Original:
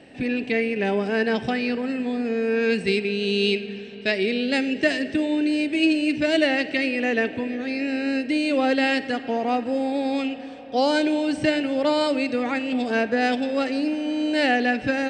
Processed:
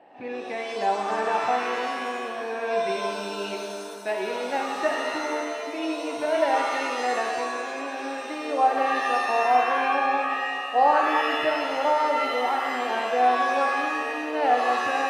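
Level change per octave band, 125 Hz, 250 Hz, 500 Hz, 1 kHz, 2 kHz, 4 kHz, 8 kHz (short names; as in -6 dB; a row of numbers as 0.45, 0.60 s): under -10 dB, -12.5 dB, -2.5 dB, +8.0 dB, -2.0 dB, -5.5 dB, +3.0 dB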